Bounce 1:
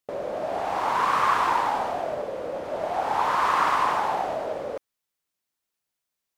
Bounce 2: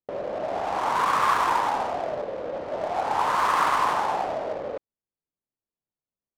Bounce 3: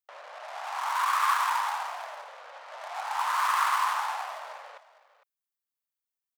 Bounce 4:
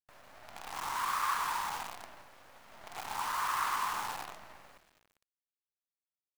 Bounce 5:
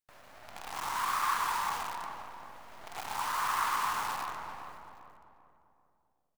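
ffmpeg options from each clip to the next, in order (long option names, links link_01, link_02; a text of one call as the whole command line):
ffmpeg -i in.wav -af "adynamicsmooth=sensitivity=8:basefreq=670" out.wav
ffmpeg -i in.wav -af "highpass=frequency=950:width=0.5412,highpass=frequency=950:width=1.3066,highshelf=frequency=11000:gain=11,aecho=1:1:455:0.158,volume=-2dB" out.wav
ffmpeg -i in.wav -af "acrusher=bits=6:dc=4:mix=0:aa=0.000001,volume=-7.5dB" out.wav
ffmpeg -i in.wav -filter_complex "[0:a]asplit=2[link_01][link_02];[link_02]adelay=393,lowpass=frequency=1400:poles=1,volume=-5.5dB,asplit=2[link_03][link_04];[link_04]adelay=393,lowpass=frequency=1400:poles=1,volume=0.45,asplit=2[link_05][link_06];[link_06]adelay=393,lowpass=frequency=1400:poles=1,volume=0.45,asplit=2[link_07][link_08];[link_08]adelay=393,lowpass=frequency=1400:poles=1,volume=0.45,asplit=2[link_09][link_10];[link_10]adelay=393,lowpass=frequency=1400:poles=1,volume=0.45[link_11];[link_01][link_03][link_05][link_07][link_09][link_11]amix=inputs=6:normalize=0,volume=1.5dB" out.wav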